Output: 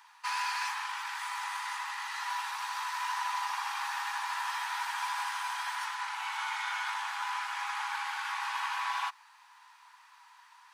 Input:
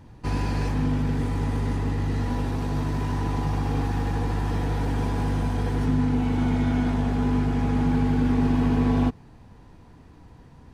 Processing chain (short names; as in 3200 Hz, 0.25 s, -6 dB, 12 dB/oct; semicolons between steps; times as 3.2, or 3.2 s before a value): steep high-pass 890 Hz 72 dB/oct; gain +4.5 dB